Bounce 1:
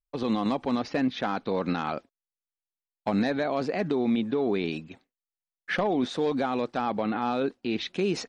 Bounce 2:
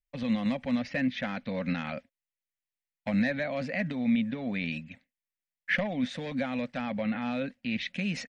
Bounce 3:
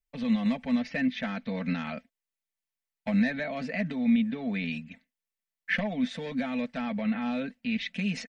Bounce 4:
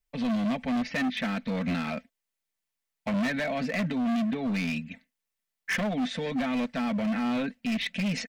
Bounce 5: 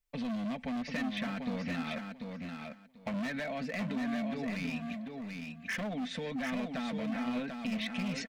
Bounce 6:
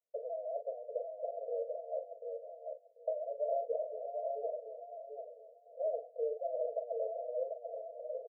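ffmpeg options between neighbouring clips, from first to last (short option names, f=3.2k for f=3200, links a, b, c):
-af "firequalizer=gain_entry='entry(250,0);entry(370,-26);entry(540,-1);entry(770,-11);entry(1200,-11);entry(1900,6);entry(3800,-5)':delay=0.05:min_phase=1"
-af "aecho=1:1:4.5:0.61,volume=-1.5dB"
-af "asoftclip=type=hard:threshold=-29.5dB,volume=4.5dB"
-af "acompressor=threshold=-32dB:ratio=6,aecho=1:1:741|1482|2223:0.562|0.101|0.0182,volume=-2.5dB"
-filter_complex "[0:a]asuperpass=centerf=550:order=20:qfactor=2.2,asplit=2[a][b];[b]adelay=41,volume=-8dB[c];[a][c]amix=inputs=2:normalize=0,volume=7dB"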